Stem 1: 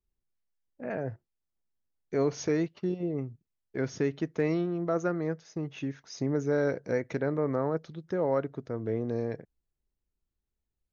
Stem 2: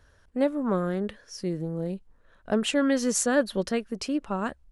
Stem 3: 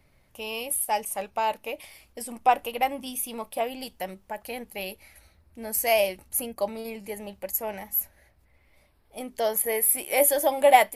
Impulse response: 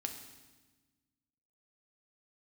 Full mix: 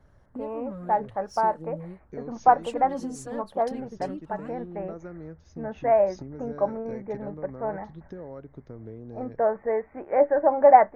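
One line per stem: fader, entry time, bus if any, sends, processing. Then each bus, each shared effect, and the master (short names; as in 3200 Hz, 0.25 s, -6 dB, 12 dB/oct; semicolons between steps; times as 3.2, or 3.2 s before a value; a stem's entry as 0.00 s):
-8.0 dB, 0.00 s, bus A, no send, dry
-6.0 dB, 0.00 s, bus A, no send, sample leveller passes 1; tape flanging out of phase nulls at 0.97 Hz, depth 5.8 ms
+3.0 dB, 0.00 s, no bus, no send, steep low-pass 1700 Hz 48 dB/oct
bus A: 0.0 dB, low shelf 400 Hz +9 dB; compressor 4:1, threshold -38 dBFS, peak gain reduction 16 dB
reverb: off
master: dry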